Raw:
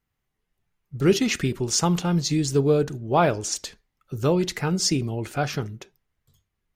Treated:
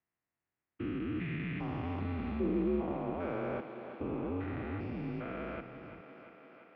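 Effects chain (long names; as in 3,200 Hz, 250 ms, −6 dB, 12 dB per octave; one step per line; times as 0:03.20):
spectrum averaged block by block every 400 ms
single-sideband voice off tune −85 Hz 200–2,700 Hz
feedback echo with a high-pass in the loop 344 ms, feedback 76%, high-pass 200 Hz, level −10 dB
level −6 dB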